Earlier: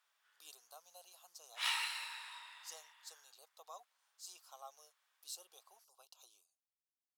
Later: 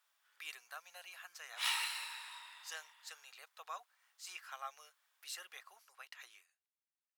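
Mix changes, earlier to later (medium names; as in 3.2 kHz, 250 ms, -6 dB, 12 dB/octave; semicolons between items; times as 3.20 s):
speech: remove Butterworth band-stop 1.9 kHz, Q 0.57; background: add treble shelf 10 kHz +7.5 dB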